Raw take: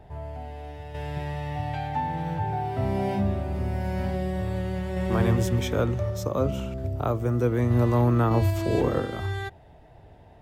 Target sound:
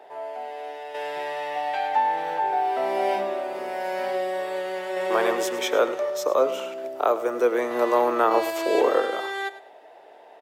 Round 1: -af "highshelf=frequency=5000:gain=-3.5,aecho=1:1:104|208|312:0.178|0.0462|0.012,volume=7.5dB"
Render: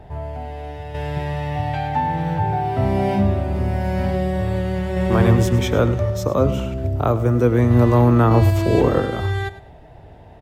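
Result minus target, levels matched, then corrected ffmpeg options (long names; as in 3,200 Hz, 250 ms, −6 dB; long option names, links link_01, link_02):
500 Hz band −4.0 dB
-af "highpass=frequency=420:width=0.5412,highpass=frequency=420:width=1.3066,highshelf=frequency=5000:gain=-3.5,aecho=1:1:104|208|312:0.178|0.0462|0.012,volume=7.5dB"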